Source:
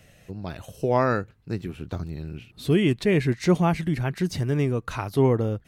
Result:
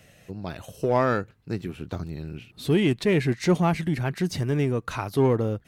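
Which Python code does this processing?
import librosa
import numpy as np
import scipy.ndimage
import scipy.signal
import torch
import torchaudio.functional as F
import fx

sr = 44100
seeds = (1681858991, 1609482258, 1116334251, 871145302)

p1 = fx.low_shelf(x, sr, hz=66.0, db=-9.0)
p2 = np.clip(p1, -10.0 ** (-22.0 / 20.0), 10.0 ** (-22.0 / 20.0))
p3 = p1 + (p2 * 10.0 ** (-7.5 / 20.0))
y = p3 * 10.0 ** (-2.0 / 20.0)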